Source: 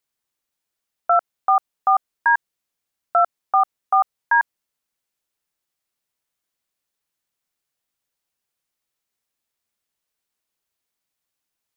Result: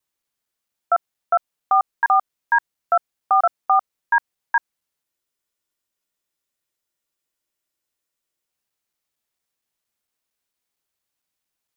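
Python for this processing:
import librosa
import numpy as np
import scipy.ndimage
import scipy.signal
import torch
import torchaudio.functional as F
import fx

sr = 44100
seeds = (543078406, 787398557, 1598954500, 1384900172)

y = fx.block_reorder(x, sr, ms=229.0, group=2)
y = fx.spec_freeze(y, sr, seeds[0], at_s=5.06, hold_s=3.42)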